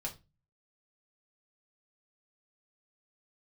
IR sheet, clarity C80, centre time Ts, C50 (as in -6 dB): 22.5 dB, 12 ms, 14.5 dB